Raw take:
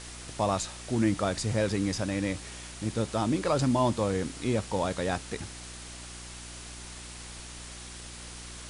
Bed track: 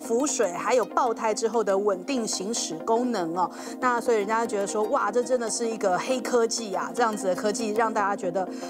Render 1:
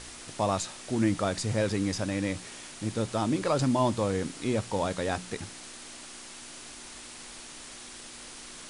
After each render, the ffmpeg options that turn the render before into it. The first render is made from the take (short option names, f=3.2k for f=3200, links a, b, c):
-af "bandreject=f=60:t=h:w=4,bandreject=f=120:t=h:w=4,bandreject=f=180:t=h:w=4"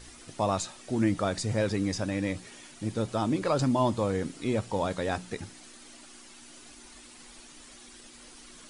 -af "afftdn=nr=9:nf=-45"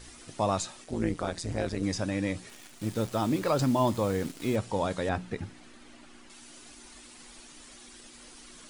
-filter_complex "[0:a]asettb=1/sr,asplit=3[a][b][c];[a]atrim=end=0.844[d];[b]atrim=start=0.84:end=1.83,asetpts=PTS-STARTPTS,afade=t=in:d=0.004:c=qsin,afade=t=out:st=0.986:d=0.004:c=qsin,tremolo=f=170:d=0.889[e];[c]atrim=start=1.826[f];[d][e]acrossfade=d=0.004:c1=hsin:c2=qsin[g];[g][f]acrossfade=d=0.004:c1=qsin:c2=hsin,asettb=1/sr,asplit=3[h][i][j];[h]atrim=end=2.494[k];[i]atrim=start=2.49:end=4.56,asetpts=PTS-STARTPTS,afade=t=in:d=0.004:c=qsin,afade=t=out:st=2.066:d=0.004:c=qsin,acrusher=bits=8:dc=4:mix=0:aa=0.000001[l];[j]atrim=start=4.556[m];[k][l]acrossfade=d=0.004:c1=hsin:c2=qsin[n];[n][m]acrossfade=d=0.004:c1=qsin:c2=hsin,asettb=1/sr,asplit=3[o][p][q];[o]atrim=end=5.094[r];[p]atrim=start=5.09:end=6.3,asetpts=PTS-STARTPTS,afade=t=in:d=0.004:c=qsin,afade=t=out:st=1.206:d=0.004:c=qsin,bass=f=250:g=4,treble=f=4k:g=-11[s];[q]atrim=start=6.296[t];[r][s]acrossfade=d=0.004:c1=hsin:c2=qsin[u];[u][t]acrossfade=d=0.004:c1=qsin:c2=hsin"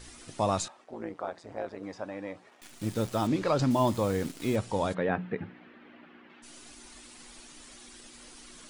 -filter_complex "[0:a]asettb=1/sr,asplit=3[a][b][c];[a]atrim=end=0.684[d];[b]atrim=start=0.68:end=2.62,asetpts=PTS-STARTPTS,afade=t=in:d=0.004:c=qsin,afade=t=out:st=1.936:d=0.004:c=qsin,bandpass=f=820:t=q:w=1.2[e];[c]atrim=start=2.616[f];[d][e]acrossfade=d=0.004:c1=hsin:c2=qsin[g];[g][f]acrossfade=d=0.004:c1=qsin:c2=hsin,asettb=1/sr,asplit=3[h][i][j];[h]atrim=end=3.274[k];[i]atrim=start=3.27:end=3.71,asetpts=PTS-STARTPTS,afade=t=in:d=0.004:c=qsin,afade=t=out:st=0.436:d=0.004:c=qsin,lowpass=6.3k[l];[j]atrim=start=3.706[m];[k][l]acrossfade=d=0.004:c1=hsin:c2=qsin[n];[n][m]acrossfade=d=0.004:c1=qsin:c2=hsin,asplit=3[o][p][q];[o]afade=t=out:st=4.93:d=0.02[r];[p]highpass=150,equalizer=f=180:t=q:w=4:g=6,equalizer=f=450:t=q:w=4:g=4,equalizer=f=1.7k:t=q:w=4:g=3,lowpass=f=2.8k:w=0.5412,lowpass=f=2.8k:w=1.3066,afade=t=in:st=4.93:d=0.02,afade=t=out:st=6.42:d=0.02[s];[q]afade=t=in:st=6.42:d=0.02[t];[r][s][t]amix=inputs=3:normalize=0"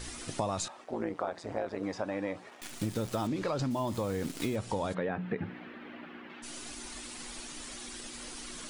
-filter_complex "[0:a]asplit=2[a][b];[b]alimiter=level_in=1dB:limit=-24dB:level=0:latency=1:release=16,volume=-1dB,volume=1dB[c];[a][c]amix=inputs=2:normalize=0,acompressor=threshold=-29dB:ratio=10"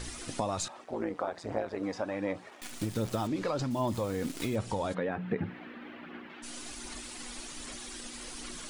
-af "aphaser=in_gain=1:out_gain=1:delay=4.1:decay=0.29:speed=1.3:type=sinusoidal"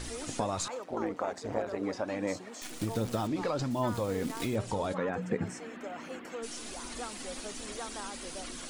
-filter_complex "[1:a]volume=-18.5dB[a];[0:a][a]amix=inputs=2:normalize=0"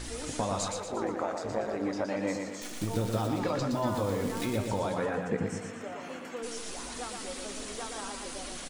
-filter_complex "[0:a]asplit=2[a][b];[b]adelay=20,volume=-11.5dB[c];[a][c]amix=inputs=2:normalize=0,asplit=2[d][e];[e]aecho=0:1:118|236|354|472|590|708:0.562|0.276|0.135|0.0662|0.0324|0.0159[f];[d][f]amix=inputs=2:normalize=0"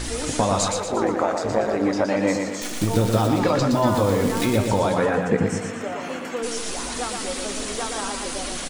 -af "volume=10.5dB"